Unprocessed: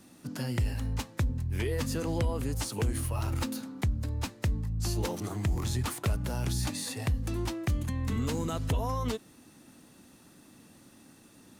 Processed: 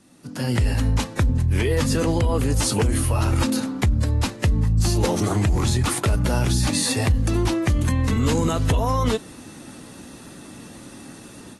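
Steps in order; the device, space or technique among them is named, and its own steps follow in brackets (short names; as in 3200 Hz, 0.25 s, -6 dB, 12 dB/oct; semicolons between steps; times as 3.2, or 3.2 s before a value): low-bitrate web radio (AGC gain up to 14 dB; limiter -13 dBFS, peak gain reduction 7.5 dB; AAC 32 kbps 32000 Hz)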